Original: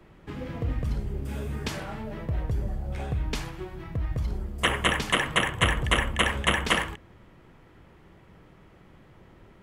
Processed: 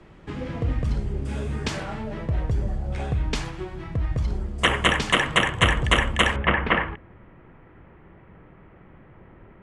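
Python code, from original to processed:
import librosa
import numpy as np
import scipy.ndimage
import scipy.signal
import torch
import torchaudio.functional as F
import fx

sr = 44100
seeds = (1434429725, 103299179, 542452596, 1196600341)

y = fx.lowpass(x, sr, hz=fx.steps((0.0, 9100.0), (6.36, 2400.0)), slope=24)
y = y * 10.0 ** (4.0 / 20.0)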